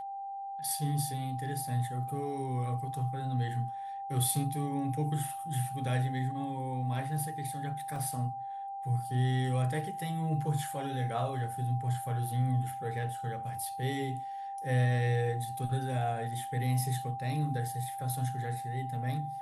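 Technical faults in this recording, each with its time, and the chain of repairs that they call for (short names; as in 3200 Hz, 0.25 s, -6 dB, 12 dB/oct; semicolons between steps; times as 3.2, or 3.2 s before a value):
tone 790 Hz -37 dBFS
7.96 gap 2.1 ms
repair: notch 790 Hz, Q 30; interpolate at 7.96, 2.1 ms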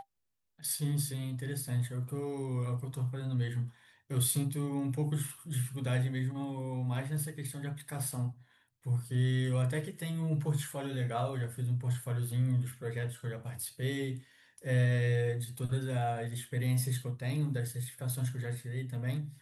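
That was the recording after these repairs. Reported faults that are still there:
none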